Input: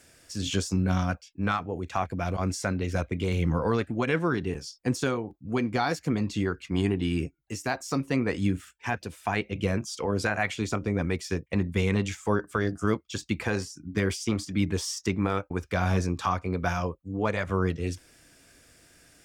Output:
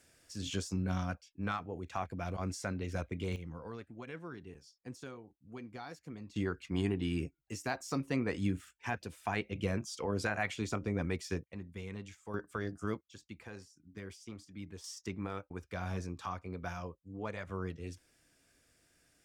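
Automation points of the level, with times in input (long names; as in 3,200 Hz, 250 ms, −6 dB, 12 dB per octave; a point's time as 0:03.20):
−9 dB
from 0:03.36 −19.5 dB
from 0:06.36 −7 dB
from 0:11.44 −18.5 dB
from 0:12.34 −11 dB
from 0:13.01 −20 dB
from 0:14.84 −13 dB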